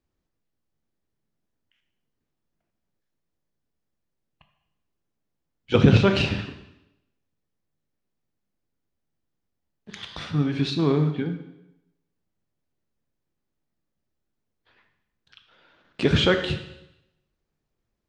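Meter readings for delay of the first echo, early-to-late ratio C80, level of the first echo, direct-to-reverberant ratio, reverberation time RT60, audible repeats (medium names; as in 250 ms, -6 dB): no echo, 11.0 dB, no echo, 6.0 dB, 0.90 s, no echo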